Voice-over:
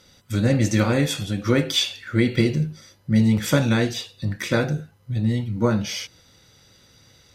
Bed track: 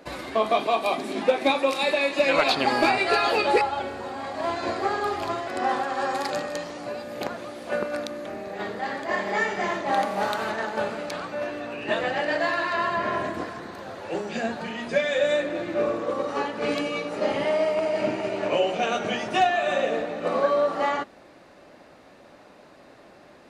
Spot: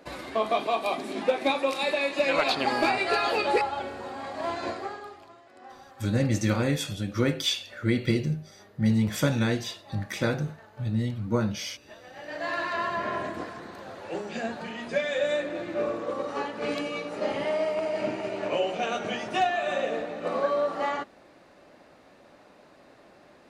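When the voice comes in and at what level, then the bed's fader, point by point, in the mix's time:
5.70 s, -5.5 dB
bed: 4.66 s -3.5 dB
5.3 s -23 dB
12.03 s -23 dB
12.54 s -4 dB

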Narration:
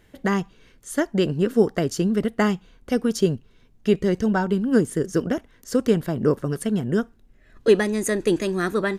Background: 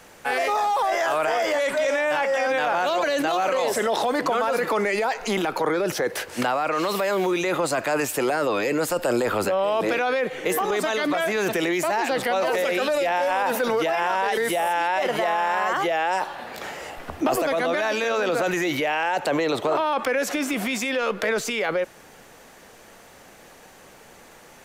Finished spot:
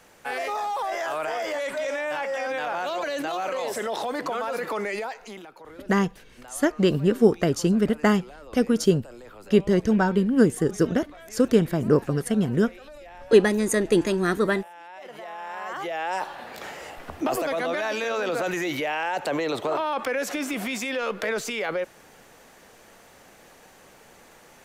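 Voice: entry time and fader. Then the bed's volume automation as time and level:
5.65 s, +0.5 dB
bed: 4.97 s -6 dB
5.56 s -22.5 dB
14.74 s -22.5 dB
16.2 s -3.5 dB

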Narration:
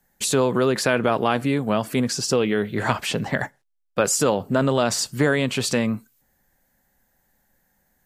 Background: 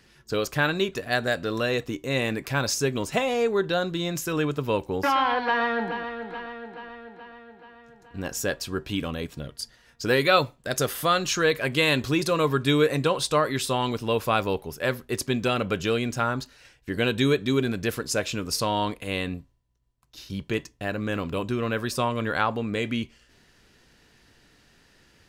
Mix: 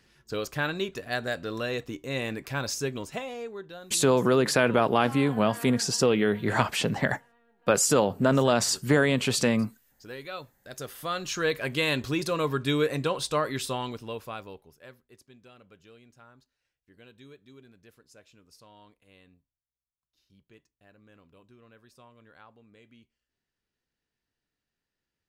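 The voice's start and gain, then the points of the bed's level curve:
3.70 s, -2.0 dB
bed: 2.87 s -5.5 dB
3.79 s -19 dB
10.39 s -19 dB
11.47 s -4.5 dB
13.65 s -4.5 dB
15.26 s -29 dB

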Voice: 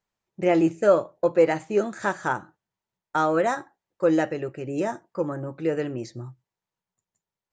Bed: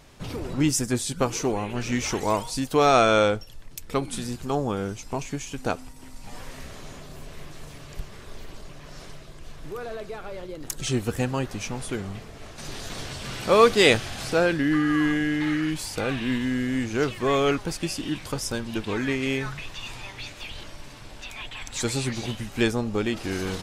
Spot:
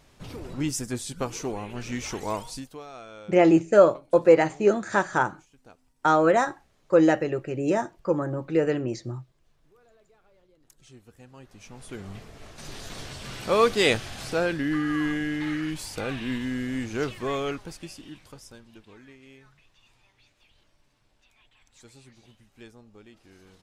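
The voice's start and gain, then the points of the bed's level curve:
2.90 s, +2.5 dB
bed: 2.53 s -6 dB
2.86 s -25.5 dB
11.18 s -25.5 dB
12.15 s -4 dB
17.1 s -4 dB
19.16 s -25 dB

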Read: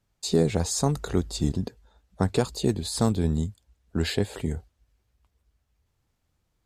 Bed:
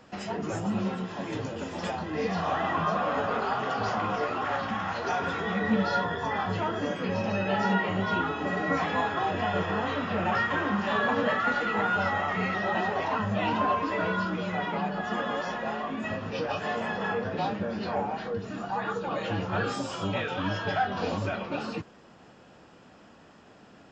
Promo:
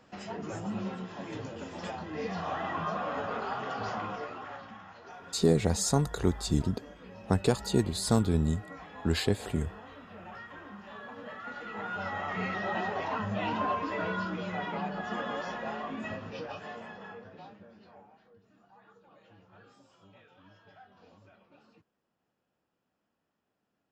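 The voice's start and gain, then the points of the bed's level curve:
5.10 s, -2.0 dB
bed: 3.97 s -6 dB
4.92 s -19 dB
11.15 s -19 dB
12.4 s -4.5 dB
16.03 s -4.5 dB
18.26 s -28.5 dB

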